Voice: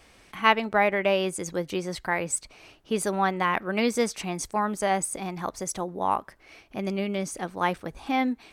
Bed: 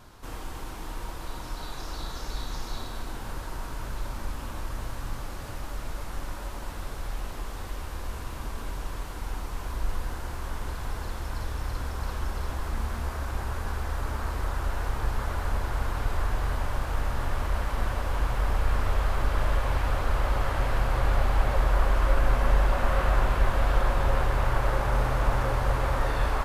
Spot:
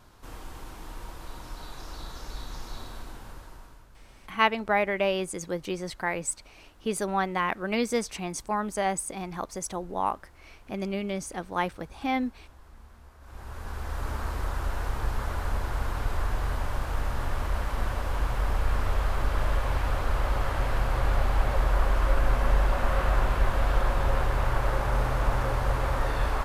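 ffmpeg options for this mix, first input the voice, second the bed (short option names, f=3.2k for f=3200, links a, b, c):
-filter_complex "[0:a]adelay=3950,volume=-2.5dB[a];[1:a]volume=15dB,afade=t=out:st=2.91:d=0.96:silence=0.158489,afade=t=in:st=13.2:d=0.89:silence=0.105925[b];[a][b]amix=inputs=2:normalize=0"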